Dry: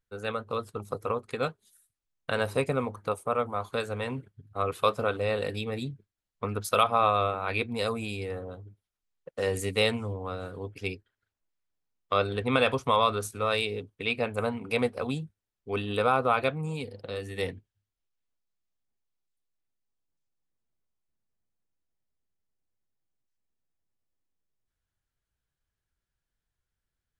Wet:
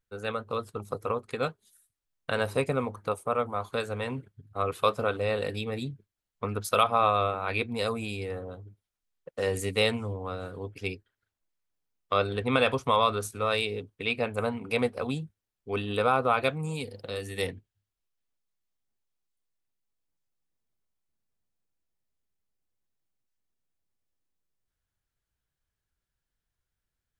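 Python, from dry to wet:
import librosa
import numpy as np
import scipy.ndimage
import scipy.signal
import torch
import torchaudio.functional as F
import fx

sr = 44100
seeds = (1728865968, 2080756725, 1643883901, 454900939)

y = fx.high_shelf(x, sr, hz=4900.0, db=9.0, at=(16.44, 17.47))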